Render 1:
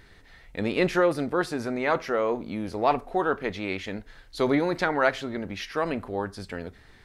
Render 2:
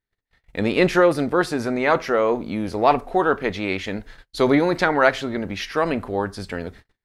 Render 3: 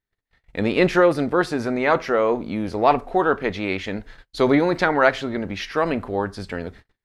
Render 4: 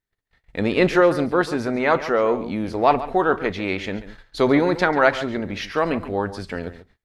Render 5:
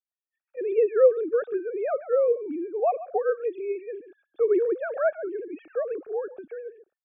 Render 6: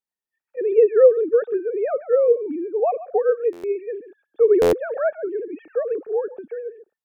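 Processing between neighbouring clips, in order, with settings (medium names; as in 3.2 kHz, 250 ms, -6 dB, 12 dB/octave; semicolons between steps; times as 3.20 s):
gate -47 dBFS, range -41 dB; trim +6 dB
treble shelf 8.1 kHz -8.5 dB
echo from a far wall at 24 m, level -14 dB
formants replaced by sine waves; boxcar filter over 44 samples
small resonant body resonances 210/440/880/1800 Hz, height 7 dB, ringing for 20 ms; buffer glitch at 3.52/4.61 s, samples 512, times 9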